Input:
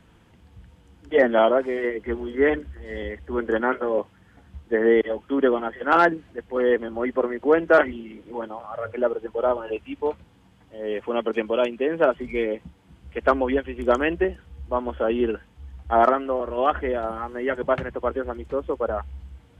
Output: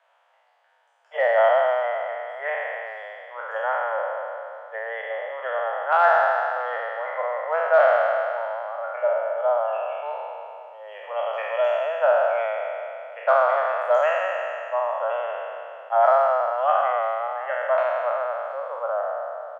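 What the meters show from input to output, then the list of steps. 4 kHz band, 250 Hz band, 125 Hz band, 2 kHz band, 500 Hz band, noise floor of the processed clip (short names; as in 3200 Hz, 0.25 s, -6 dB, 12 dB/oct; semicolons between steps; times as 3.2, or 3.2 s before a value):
n/a, under -40 dB, under -35 dB, +1.0 dB, 0.0 dB, -63 dBFS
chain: spectral trails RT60 2.74 s; steep high-pass 580 Hz 72 dB/oct; tilt -4.5 dB/oct; speakerphone echo 0.11 s, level -27 dB; gain -3 dB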